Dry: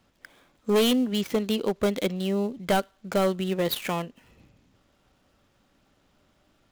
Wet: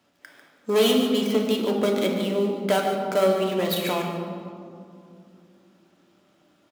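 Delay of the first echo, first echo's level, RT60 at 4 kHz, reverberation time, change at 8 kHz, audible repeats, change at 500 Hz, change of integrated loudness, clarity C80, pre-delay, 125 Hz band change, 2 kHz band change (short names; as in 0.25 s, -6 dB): 0.147 s, -9.5 dB, 1.2 s, 2.4 s, +2.0 dB, 1, +4.5 dB, +3.0 dB, 4.0 dB, 3 ms, 0.0 dB, +2.5 dB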